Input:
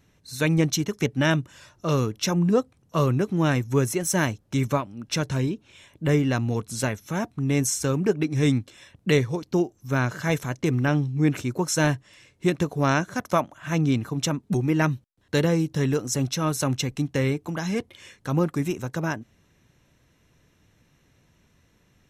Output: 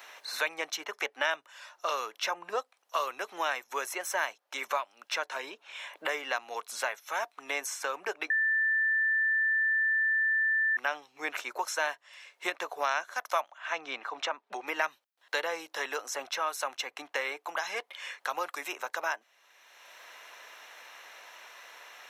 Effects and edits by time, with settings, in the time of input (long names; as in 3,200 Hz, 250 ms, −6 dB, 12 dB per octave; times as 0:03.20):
0:08.30–0:10.77: beep over 1,770 Hz −23.5 dBFS
0:13.51–0:14.67: Bessel low-pass filter 4,100 Hz
whole clip: high-pass filter 690 Hz 24 dB per octave; parametric band 8,500 Hz −8.5 dB 1.6 octaves; multiband upward and downward compressor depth 70%